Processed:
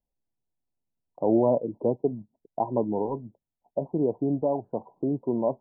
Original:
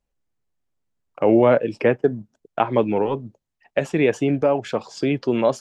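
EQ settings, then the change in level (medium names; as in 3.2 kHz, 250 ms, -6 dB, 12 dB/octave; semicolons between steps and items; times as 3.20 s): rippled Chebyshev low-pass 1 kHz, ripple 3 dB; -5.0 dB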